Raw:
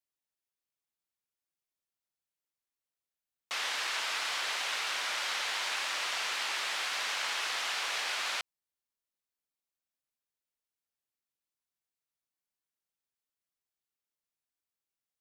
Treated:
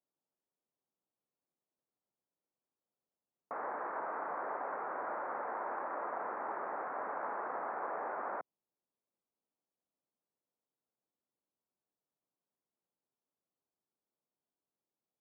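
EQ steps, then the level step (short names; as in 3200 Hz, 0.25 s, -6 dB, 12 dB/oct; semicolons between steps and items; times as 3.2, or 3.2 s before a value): Gaussian blur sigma 8.7 samples; HPF 170 Hz 12 dB/oct; air absorption 220 m; +10.0 dB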